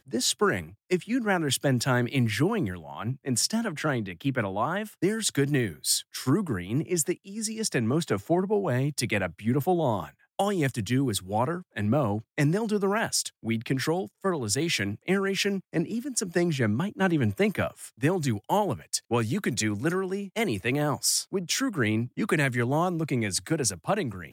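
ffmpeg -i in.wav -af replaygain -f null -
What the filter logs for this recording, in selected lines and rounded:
track_gain = +8.0 dB
track_peak = 0.185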